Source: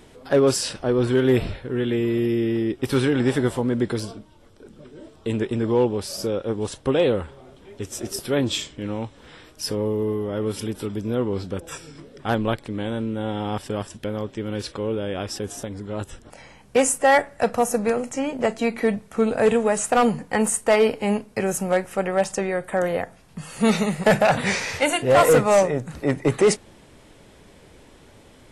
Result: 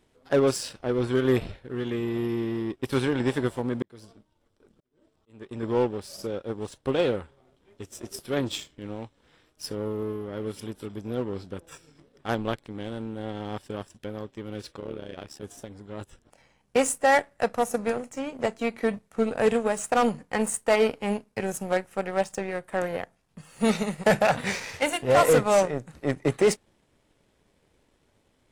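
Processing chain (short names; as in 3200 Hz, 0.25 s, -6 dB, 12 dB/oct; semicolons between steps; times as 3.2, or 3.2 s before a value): 3.82–5.63 auto swell 0.441 s; 14.8–15.43 AM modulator 72 Hz, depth 55%; power-law curve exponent 1.4; gain -3 dB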